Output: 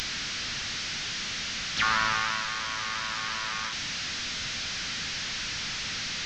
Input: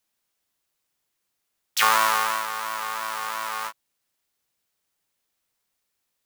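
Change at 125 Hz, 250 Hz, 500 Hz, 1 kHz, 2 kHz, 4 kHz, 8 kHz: n/a, +7.5 dB, -7.0 dB, -7.0 dB, +0.5 dB, +5.0 dB, 0.0 dB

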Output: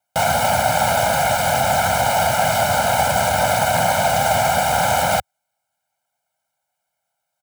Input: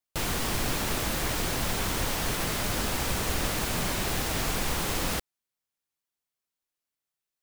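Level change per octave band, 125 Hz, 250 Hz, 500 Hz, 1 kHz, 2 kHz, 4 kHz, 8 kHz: +7.5, +4.0, +16.0, +18.5, +11.5, +7.0, +8.0 dB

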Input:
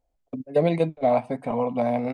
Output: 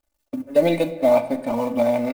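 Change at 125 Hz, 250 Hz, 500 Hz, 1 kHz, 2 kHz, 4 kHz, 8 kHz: -3.5 dB, +3.5 dB, +4.5 dB, -0.5 dB, +5.0 dB, +8.0 dB, n/a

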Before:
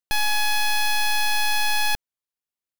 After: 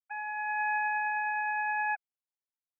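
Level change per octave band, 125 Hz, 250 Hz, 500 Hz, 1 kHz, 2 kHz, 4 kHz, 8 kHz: n/a, under -40 dB, under -25 dB, -4.0 dB, -6.0 dB, under -40 dB, under -40 dB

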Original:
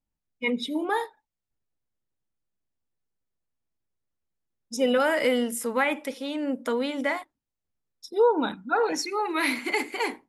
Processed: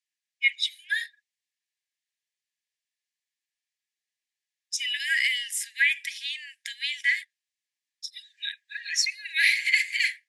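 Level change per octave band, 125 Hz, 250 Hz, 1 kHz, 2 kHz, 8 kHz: n/a, under -40 dB, under -40 dB, +6.0 dB, +5.0 dB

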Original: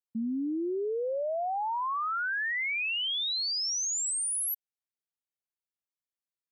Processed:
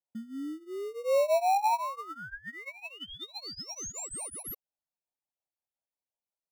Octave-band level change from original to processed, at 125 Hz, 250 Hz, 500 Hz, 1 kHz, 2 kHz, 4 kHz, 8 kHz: n/a, -7.0 dB, +3.0 dB, +2.5 dB, -11.0 dB, -11.5 dB, -9.0 dB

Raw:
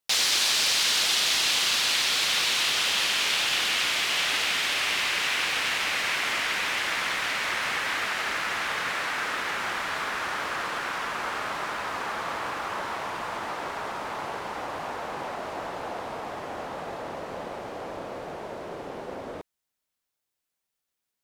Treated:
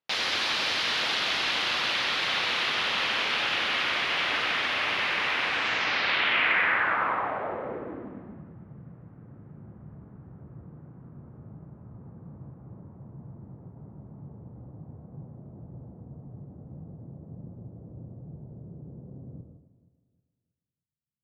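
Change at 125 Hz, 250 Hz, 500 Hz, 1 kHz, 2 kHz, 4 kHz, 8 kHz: +7.0 dB, 0.0 dB, -3.0 dB, -2.0 dB, -1.0 dB, -4.5 dB, under -15 dB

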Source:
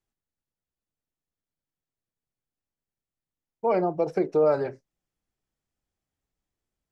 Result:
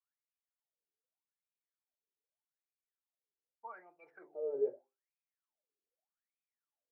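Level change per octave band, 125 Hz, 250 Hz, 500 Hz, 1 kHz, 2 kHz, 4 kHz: under -35 dB, -26.5 dB, -15.0 dB, -22.0 dB, -17.0 dB, n/a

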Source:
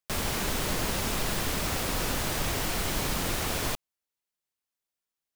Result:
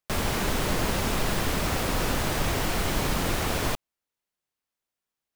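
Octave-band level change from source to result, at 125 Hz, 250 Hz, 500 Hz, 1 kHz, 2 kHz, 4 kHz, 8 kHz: +4.5, +4.5, +4.5, +4.0, +2.5, +1.0, -1.0 dB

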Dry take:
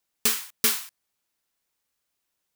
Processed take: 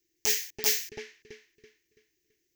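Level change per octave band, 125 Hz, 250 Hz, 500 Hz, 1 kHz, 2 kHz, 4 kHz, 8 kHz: -4.5, -10.5, +2.0, -7.0, -2.5, -2.0, -2.0 dB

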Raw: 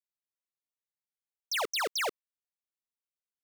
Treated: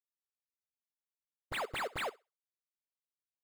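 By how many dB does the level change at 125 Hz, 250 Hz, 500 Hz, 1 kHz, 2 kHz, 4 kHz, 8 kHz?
n/a, -1.5 dB, -5.0 dB, -4.5 dB, -5.5 dB, -11.0 dB, -14.5 dB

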